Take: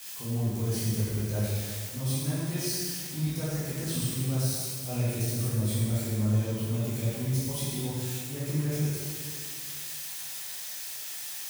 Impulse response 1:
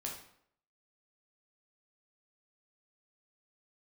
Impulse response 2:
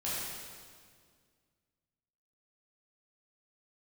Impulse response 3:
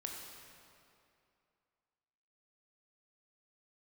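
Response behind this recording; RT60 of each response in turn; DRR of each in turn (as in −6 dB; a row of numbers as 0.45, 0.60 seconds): 2; 0.65, 1.9, 2.6 seconds; −1.5, −9.5, 0.0 decibels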